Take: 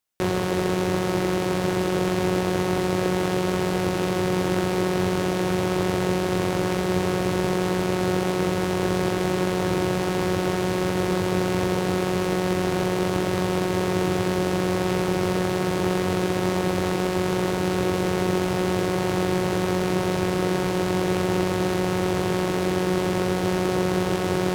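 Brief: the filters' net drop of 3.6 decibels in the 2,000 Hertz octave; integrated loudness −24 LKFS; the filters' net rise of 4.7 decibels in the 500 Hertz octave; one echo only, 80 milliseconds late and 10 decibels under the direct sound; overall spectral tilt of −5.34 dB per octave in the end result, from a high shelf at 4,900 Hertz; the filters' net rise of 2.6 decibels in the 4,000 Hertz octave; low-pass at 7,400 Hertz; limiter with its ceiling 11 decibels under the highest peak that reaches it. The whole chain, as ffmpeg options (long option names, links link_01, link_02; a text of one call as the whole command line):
ffmpeg -i in.wav -af "lowpass=7400,equalizer=frequency=500:width_type=o:gain=7,equalizer=frequency=2000:width_type=o:gain=-7,equalizer=frequency=4000:width_type=o:gain=3,highshelf=frequency=4900:gain=6,alimiter=limit=-17.5dB:level=0:latency=1,aecho=1:1:80:0.316,volume=3.5dB" out.wav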